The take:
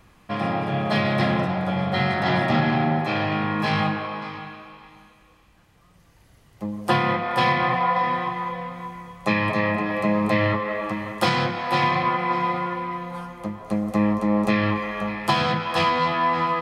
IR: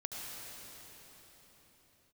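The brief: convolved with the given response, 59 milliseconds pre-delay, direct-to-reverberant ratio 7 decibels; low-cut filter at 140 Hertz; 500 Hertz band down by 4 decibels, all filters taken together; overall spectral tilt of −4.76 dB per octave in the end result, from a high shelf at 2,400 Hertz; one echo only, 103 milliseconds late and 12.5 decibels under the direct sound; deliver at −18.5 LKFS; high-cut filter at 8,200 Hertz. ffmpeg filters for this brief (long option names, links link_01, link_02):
-filter_complex "[0:a]highpass=140,lowpass=8200,equalizer=frequency=500:width_type=o:gain=-4.5,highshelf=frequency=2400:gain=-8.5,aecho=1:1:103:0.237,asplit=2[link_01][link_02];[1:a]atrim=start_sample=2205,adelay=59[link_03];[link_02][link_03]afir=irnorm=-1:irlink=0,volume=-8dB[link_04];[link_01][link_04]amix=inputs=2:normalize=0,volume=6.5dB"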